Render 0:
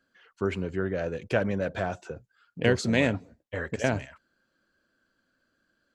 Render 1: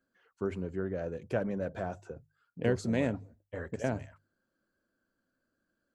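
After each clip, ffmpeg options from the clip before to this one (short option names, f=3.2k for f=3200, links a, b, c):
-af "equalizer=f=3.2k:t=o:w=2.3:g=-10,bandreject=f=50:t=h:w=6,bandreject=f=100:t=h:w=6,bandreject=f=150:t=h:w=6,volume=-4.5dB"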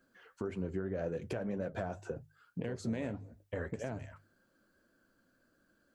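-af "acompressor=threshold=-43dB:ratio=2,flanger=delay=5.4:depth=6.5:regen=-67:speed=1.8:shape=triangular,alimiter=level_in=15.5dB:limit=-24dB:level=0:latency=1:release=396,volume=-15.5dB,volume=13dB"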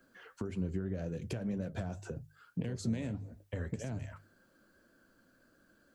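-filter_complex "[0:a]acrossover=split=240|3000[a][b][c];[b]acompressor=threshold=-52dB:ratio=3[d];[a][d][c]amix=inputs=3:normalize=0,volume=5dB"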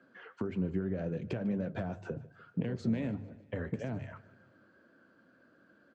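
-af "highpass=130,lowpass=2.7k,aecho=1:1:149|298|447|596:0.0891|0.0508|0.029|0.0165,volume=4dB"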